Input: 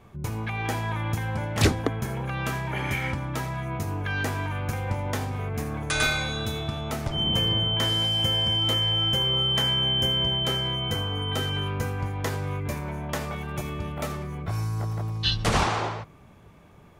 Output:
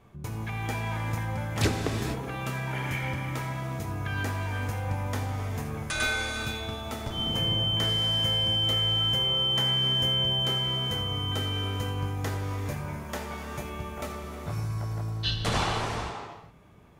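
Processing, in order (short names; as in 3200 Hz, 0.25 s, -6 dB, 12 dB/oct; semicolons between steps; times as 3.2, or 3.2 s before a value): non-linear reverb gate 0.5 s flat, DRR 3 dB; gain -5 dB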